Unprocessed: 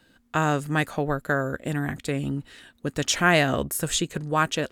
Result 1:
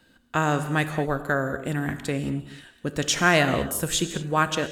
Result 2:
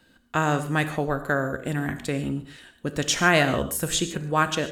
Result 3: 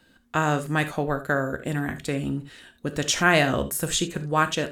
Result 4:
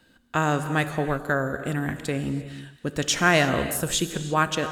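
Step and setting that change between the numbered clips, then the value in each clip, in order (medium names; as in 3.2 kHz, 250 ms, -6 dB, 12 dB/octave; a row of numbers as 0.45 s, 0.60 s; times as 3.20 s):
gated-style reverb, gate: 250 ms, 170 ms, 100 ms, 370 ms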